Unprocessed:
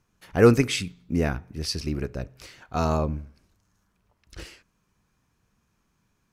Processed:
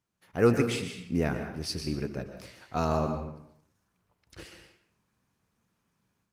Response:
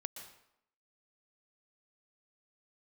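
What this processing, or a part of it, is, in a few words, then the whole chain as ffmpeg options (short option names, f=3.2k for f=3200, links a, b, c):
far-field microphone of a smart speaker: -filter_complex "[1:a]atrim=start_sample=2205[a];[0:a][a]afir=irnorm=-1:irlink=0,highpass=89,dynaudnorm=f=230:g=3:m=8dB,volume=-7.5dB" -ar 48000 -c:a libopus -b:a 32k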